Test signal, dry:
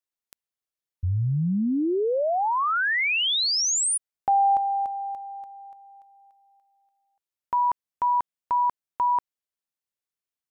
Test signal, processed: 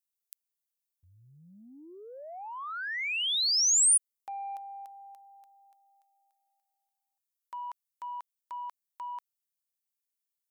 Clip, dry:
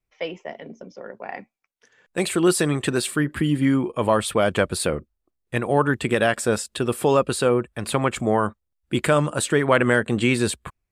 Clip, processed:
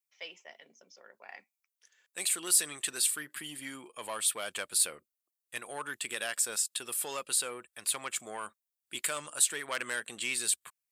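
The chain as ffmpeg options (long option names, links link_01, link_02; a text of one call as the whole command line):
ffmpeg -i in.wav -af "acontrast=68,aderivative,volume=-5.5dB" out.wav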